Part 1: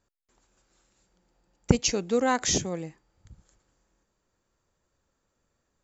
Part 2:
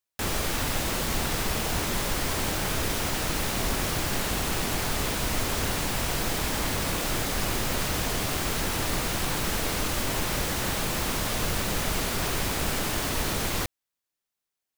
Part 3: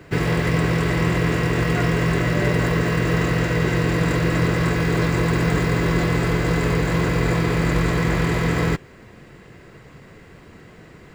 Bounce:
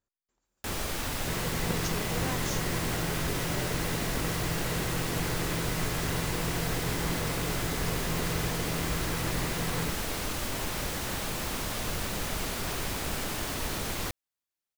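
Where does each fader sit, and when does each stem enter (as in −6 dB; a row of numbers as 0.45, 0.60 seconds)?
−13.5, −5.0, −14.5 decibels; 0.00, 0.45, 1.15 seconds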